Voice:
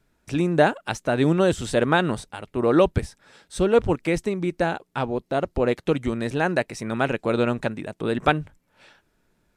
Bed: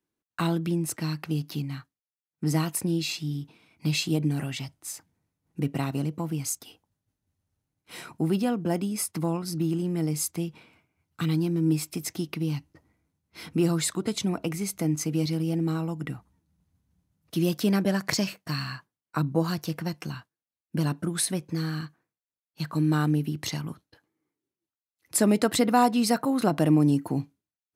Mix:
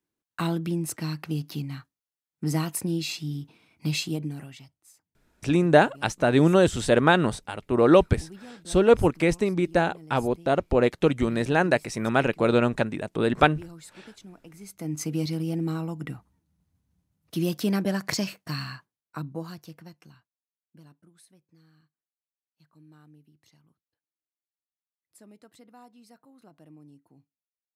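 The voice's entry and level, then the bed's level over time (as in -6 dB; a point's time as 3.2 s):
5.15 s, +1.0 dB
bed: 3.98 s -1 dB
4.92 s -19.5 dB
14.45 s -19.5 dB
15.03 s -1.5 dB
18.62 s -1.5 dB
21.22 s -30.5 dB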